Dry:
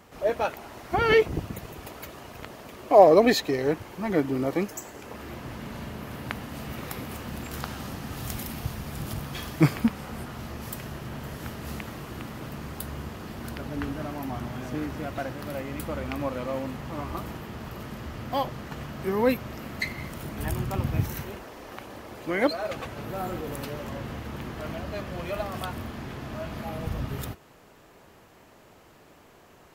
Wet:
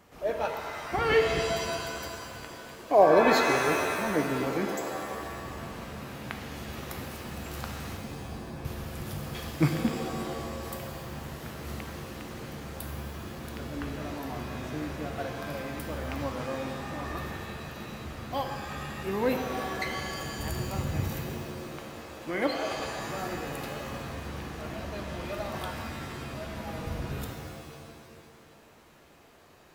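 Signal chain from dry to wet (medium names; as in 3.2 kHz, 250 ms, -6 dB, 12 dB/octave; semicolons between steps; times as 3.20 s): 7.97–8.65 s: Chebyshev low-pass 1.1 kHz, order 4; pitch-shifted reverb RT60 2 s, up +7 st, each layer -2 dB, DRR 4.5 dB; trim -5 dB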